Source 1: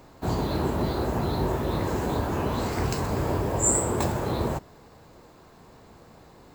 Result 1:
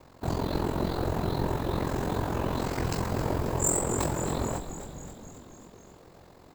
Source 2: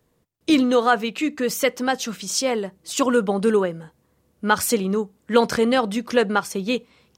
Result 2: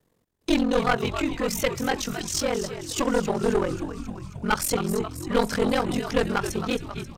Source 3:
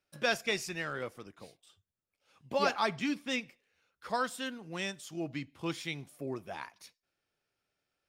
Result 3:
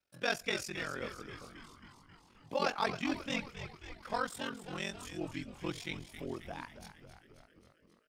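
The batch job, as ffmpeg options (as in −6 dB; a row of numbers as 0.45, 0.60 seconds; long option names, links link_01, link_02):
-filter_complex "[0:a]aeval=exprs='val(0)*sin(2*PI*22*n/s)':channel_layout=same,asplit=9[link_01][link_02][link_03][link_04][link_05][link_06][link_07][link_08][link_09];[link_02]adelay=268,afreqshift=-96,volume=-11dB[link_10];[link_03]adelay=536,afreqshift=-192,volume=-14.7dB[link_11];[link_04]adelay=804,afreqshift=-288,volume=-18.5dB[link_12];[link_05]adelay=1072,afreqshift=-384,volume=-22.2dB[link_13];[link_06]adelay=1340,afreqshift=-480,volume=-26dB[link_14];[link_07]adelay=1608,afreqshift=-576,volume=-29.7dB[link_15];[link_08]adelay=1876,afreqshift=-672,volume=-33.5dB[link_16];[link_09]adelay=2144,afreqshift=-768,volume=-37.2dB[link_17];[link_01][link_10][link_11][link_12][link_13][link_14][link_15][link_16][link_17]amix=inputs=9:normalize=0,aeval=exprs='clip(val(0),-1,0.0841)':channel_layout=same"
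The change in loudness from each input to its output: −3.0, −4.0, −3.0 LU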